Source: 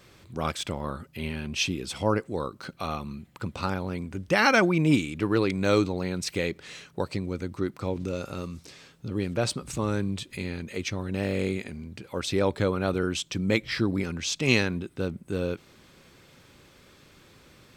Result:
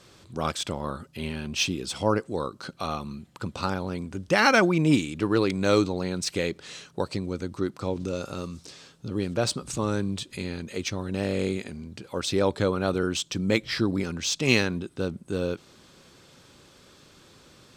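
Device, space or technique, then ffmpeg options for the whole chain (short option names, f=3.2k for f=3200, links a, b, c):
exciter from parts: -filter_complex "[0:a]lowpass=9.7k,lowshelf=f=89:g=-5.5,asplit=2[a][b];[b]highpass=f=2k:w=0.5412,highpass=f=2k:w=1.3066,asoftclip=type=tanh:threshold=-31dB,volume=-5dB[c];[a][c]amix=inputs=2:normalize=0,volume=1.5dB"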